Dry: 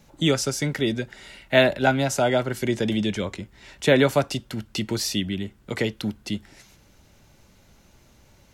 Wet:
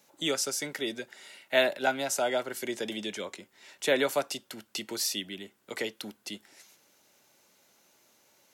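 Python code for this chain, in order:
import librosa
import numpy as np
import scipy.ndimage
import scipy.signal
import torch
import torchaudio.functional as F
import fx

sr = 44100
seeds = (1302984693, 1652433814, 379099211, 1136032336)

y = scipy.signal.sosfilt(scipy.signal.butter(2, 360.0, 'highpass', fs=sr, output='sos'), x)
y = fx.high_shelf(y, sr, hz=7100.0, db=9.5)
y = y * librosa.db_to_amplitude(-6.5)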